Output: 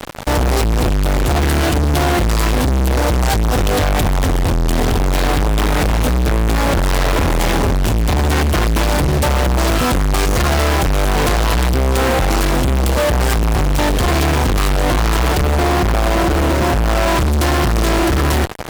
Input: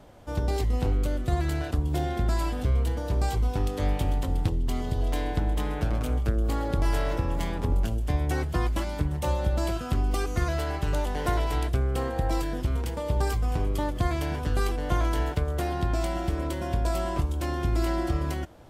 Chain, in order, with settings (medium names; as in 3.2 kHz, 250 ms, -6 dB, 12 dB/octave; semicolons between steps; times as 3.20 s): 15.45–17.08 s: median filter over 15 samples; fuzz box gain 52 dB, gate -46 dBFS